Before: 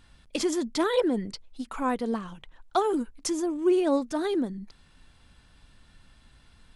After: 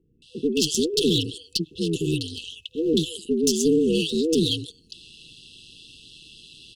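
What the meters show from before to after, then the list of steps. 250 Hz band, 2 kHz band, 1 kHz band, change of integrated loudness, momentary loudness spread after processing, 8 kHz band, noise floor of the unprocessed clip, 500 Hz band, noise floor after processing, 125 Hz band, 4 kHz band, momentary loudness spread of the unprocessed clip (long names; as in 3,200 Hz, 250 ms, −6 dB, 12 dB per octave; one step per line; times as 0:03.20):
+4.0 dB, −0.5 dB, below −40 dB, +4.5 dB, 13 LU, +9.5 dB, −59 dBFS, +3.0 dB, −59 dBFS, +15.5 dB, +14.0 dB, 14 LU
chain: meter weighting curve D
ring modulation 80 Hz
automatic gain control gain up to 5 dB
brickwall limiter −14.5 dBFS, peak gain reduction 8.5 dB
multiband delay without the direct sound lows, highs 220 ms, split 790 Hz
asymmetric clip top −24 dBFS
brick-wall band-stop 500–2,600 Hz
level +6.5 dB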